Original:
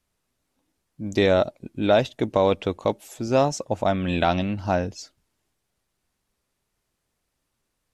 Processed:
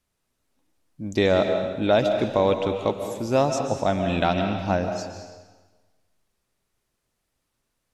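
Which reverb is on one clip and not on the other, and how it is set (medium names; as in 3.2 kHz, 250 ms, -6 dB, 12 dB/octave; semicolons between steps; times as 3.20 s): algorithmic reverb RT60 1.3 s, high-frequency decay 0.95×, pre-delay 100 ms, DRR 5.5 dB; trim -1 dB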